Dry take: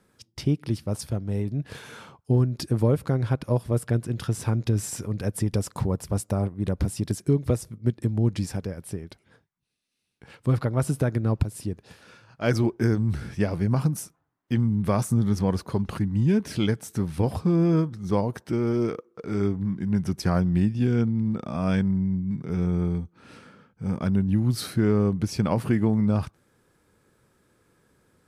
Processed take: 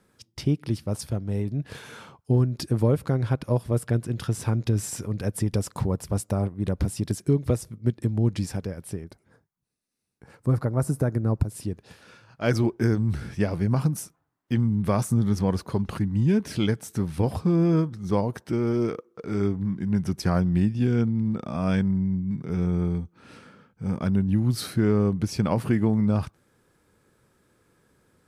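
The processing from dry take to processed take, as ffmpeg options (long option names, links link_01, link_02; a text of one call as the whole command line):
ffmpeg -i in.wav -filter_complex "[0:a]asettb=1/sr,asplit=3[link_01][link_02][link_03];[link_01]atrim=end=9.044[link_04];[link_02]atrim=start=9.04:end=11.5,asetpts=PTS-STARTPTS,afade=type=in:duration=0.004:curve=qsin,afade=type=out:start_time=2.456:duration=0.004:curve=qsin,equalizer=frequency=3100:width_type=o:width=1.1:gain=-13.5[link_05];[link_03]atrim=start=11.496[link_06];[link_04][link_05]acrossfade=duration=0.004:curve1=hsin:curve2=qsin[link_07];[link_07][link_06]acrossfade=duration=0.004:curve1=qsin:curve2=hsin" out.wav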